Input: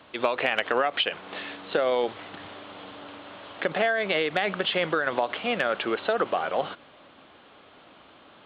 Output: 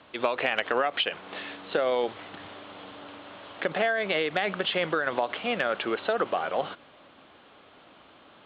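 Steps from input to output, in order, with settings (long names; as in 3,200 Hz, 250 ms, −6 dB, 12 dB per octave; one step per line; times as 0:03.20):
low-pass filter 6,700 Hz
level −1.5 dB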